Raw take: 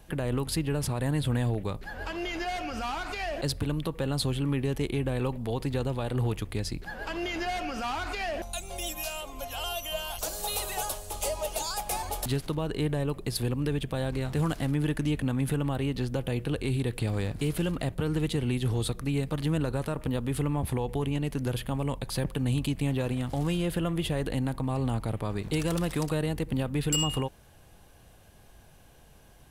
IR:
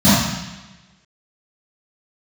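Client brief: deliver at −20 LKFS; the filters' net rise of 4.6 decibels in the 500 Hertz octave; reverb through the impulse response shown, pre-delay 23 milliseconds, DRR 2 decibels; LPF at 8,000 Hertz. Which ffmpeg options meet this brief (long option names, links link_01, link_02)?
-filter_complex "[0:a]lowpass=8000,equalizer=frequency=500:width_type=o:gain=5.5,asplit=2[link_01][link_02];[1:a]atrim=start_sample=2205,adelay=23[link_03];[link_02][link_03]afir=irnorm=-1:irlink=0,volume=-27.5dB[link_04];[link_01][link_04]amix=inputs=2:normalize=0"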